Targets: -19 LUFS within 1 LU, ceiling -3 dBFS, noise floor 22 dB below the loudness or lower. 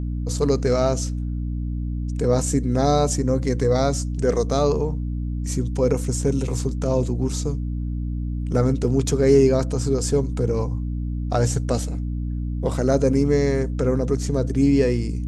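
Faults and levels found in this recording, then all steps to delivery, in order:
hum 60 Hz; harmonics up to 300 Hz; hum level -23 dBFS; loudness -22.0 LUFS; peak -4.0 dBFS; loudness target -19.0 LUFS
-> notches 60/120/180/240/300 Hz; gain +3 dB; limiter -3 dBFS

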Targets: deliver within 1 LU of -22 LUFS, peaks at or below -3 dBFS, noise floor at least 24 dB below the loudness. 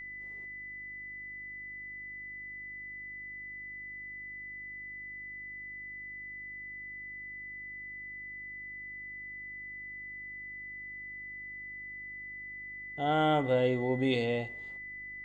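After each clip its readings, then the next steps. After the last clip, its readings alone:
hum 50 Hz; harmonics up to 350 Hz; hum level -58 dBFS; steady tone 2000 Hz; tone level -41 dBFS; loudness -37.0 LUFS; peak -16.0 dBFS; loudness target -22.0 LUFS
-> de-hum 50 Hz, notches 7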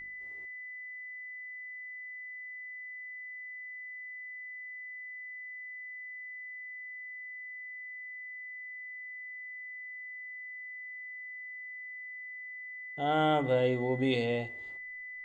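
hum none; steady tone 2000 Hz; tone level -41 dBFS
-> notch 2000 Hz, Q 30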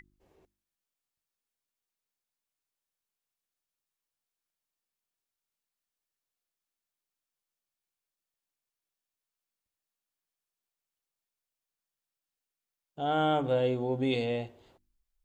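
steady tone none; loudness -29.5 LUFS; peak -17.0 dBFS; loudness target -22.0 LUFS
-> gain +7.5 dB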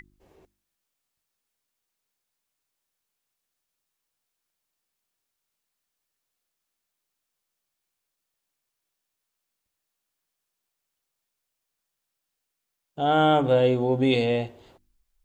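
loudness -22.0 LUFS; peak -9.5 dBFS; noise floor -83 dBFS

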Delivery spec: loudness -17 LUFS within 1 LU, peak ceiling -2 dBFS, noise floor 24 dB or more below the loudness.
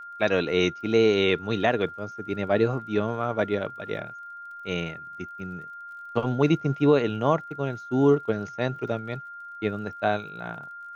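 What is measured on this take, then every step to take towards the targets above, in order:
ticks 43/s; steady tone 1400 Hz; tone level -38 dBFS; loudness -26.0 LUFS; peak -7.5 dBFS; loudness target -17.0 LUFS
-> de-click; notch 1400 Hz, Q 30; gain +9 dB; limiter -2 dBFS

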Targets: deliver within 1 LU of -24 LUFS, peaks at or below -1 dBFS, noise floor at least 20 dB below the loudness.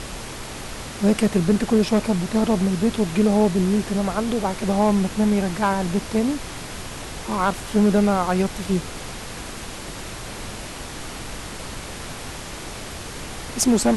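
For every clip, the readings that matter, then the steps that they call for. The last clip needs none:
clipped 0.5%; flat tops at -9.5 dBFS; noise floor -35 dBFS; noise floor target -43 dBFS; loudness -23.0 LUFS; peak -9.5 dBFS; loudness target -24.0 LUFS
-> clip repair -9.5 dBFS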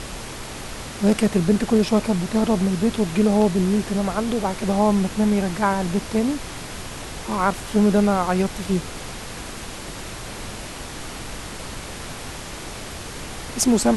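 clipped 0.0%; noise floor -35 dBFS; noise floor target -42 dBFS
-> noise print and reduce 7 dB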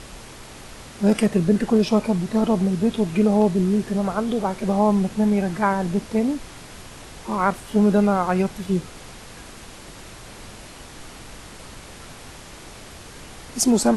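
noise floor -42 dBFS; loudness -21.0 LUFS; peak -5.5 dBFS; loudness target -24.0 LUFS
-> gain -3 dB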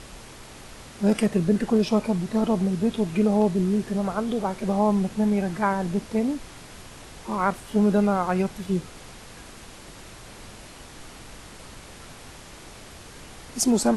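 loudness -24.0 LUFS; peak -8.5 dBFS; noise floor -45 dBFS

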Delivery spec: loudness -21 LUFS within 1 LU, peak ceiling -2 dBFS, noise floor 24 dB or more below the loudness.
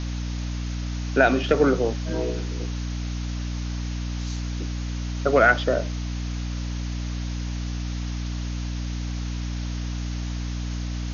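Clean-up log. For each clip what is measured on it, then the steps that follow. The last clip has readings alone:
hum 60 Hz; harmonics up to 300 Hz; hum level -26 dBFS; noise floor -29 dBFS; noise floor target -51 dBFS; loudness -26.5 LUFS; peak -2.0 dBFS; loudness target -21.0 LUFS
-> de-hum 60 Hz, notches 5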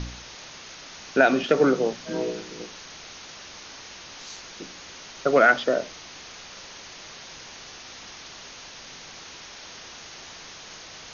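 hum none; noise floor -43 dBFS; noise floor target -47 dBFS
-> denoiser 6 dB, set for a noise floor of -43 dBFS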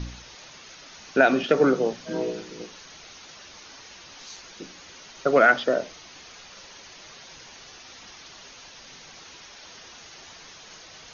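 noise floor -47 dBFS; loudness -22.5 LUFS; peak -2.5 dBFS; loudness target -21.0 LUFS
-> gain +1.5 dB; limiter -2 dBFS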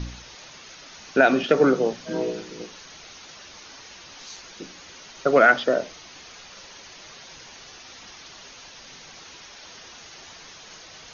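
loudness -21.0 LUFS; peak -2.0 dBFS; noise floor -45 dBFS

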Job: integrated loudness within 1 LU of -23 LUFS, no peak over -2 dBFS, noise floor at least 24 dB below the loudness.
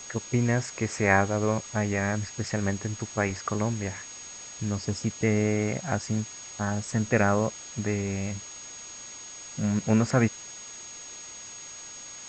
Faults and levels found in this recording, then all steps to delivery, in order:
steady tone 6600 Hz; tone level -41 dBFS; noise floor -43 dBFS; noise floor target -52 dBFS; loudness -28.0 LUFS; peak -5.5 dBFS; loudness target -23.0 LUFS
-> notch 6600 Hz, Q 30; denoiser 9 dB, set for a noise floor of -43 dBFS; gain +5 dB; limiter -2 dBFS

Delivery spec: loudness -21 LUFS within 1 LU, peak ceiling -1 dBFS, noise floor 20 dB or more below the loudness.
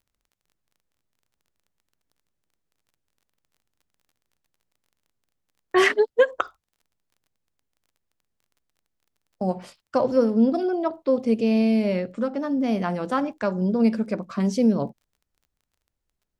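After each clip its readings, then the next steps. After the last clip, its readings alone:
ticks 25/s; loudness -23.0 LUFS; peak -7.0 dBFS; loudness target -21.0 LUFS
-> de-click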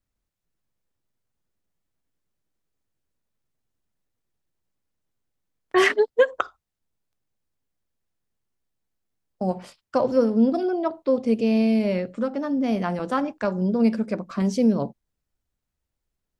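ticks 0.061/s; loudness -23.0 LUFS; peak -7.0 dBFS; loudness target -21.0 LUFS
-> gain +2 dB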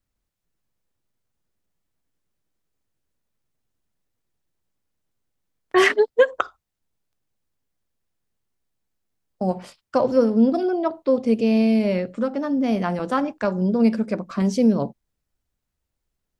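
loudness -21.0 LUFS; peak -5.0 dBFS; noise floor -81 dBFS

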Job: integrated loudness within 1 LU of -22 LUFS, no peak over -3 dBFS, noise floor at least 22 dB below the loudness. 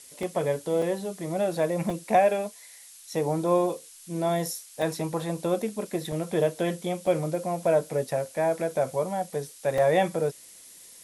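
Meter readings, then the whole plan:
dropouts 7; longest dropout 3.0 ms; noise floor -49 dBFS; noise floor target -50 dBFS; loudness -27.5 LUFS; peak -10.5 dBFS; loudness target -22.0 LUFS
-> interpolate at 0.23/0.82/1.9/4.82/6.12/7.07/9.78, 3 ms; noise print and reduce 6 dB; gain +5.5 dB

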